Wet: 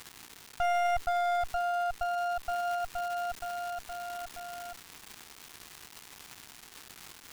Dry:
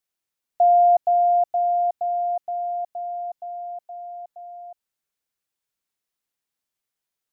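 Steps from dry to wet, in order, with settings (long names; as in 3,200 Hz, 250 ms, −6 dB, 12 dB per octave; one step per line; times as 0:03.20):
lower of the sound and its delayed copy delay 1.1 ms
hard clipping −17.5 dBFS, distortion −12 dB
surface crackle 540 per second −34 dBFS
brickwall limiter −23 dBFS, peak gain reduction 7.5 dB
parametric band 570 Hz −9 dB 0.34 octaves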